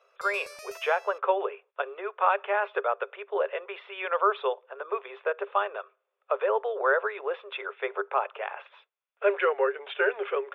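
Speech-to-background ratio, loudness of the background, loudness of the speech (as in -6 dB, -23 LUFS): 17.0 dB, -46.0 LUFS, -29.0 LUFS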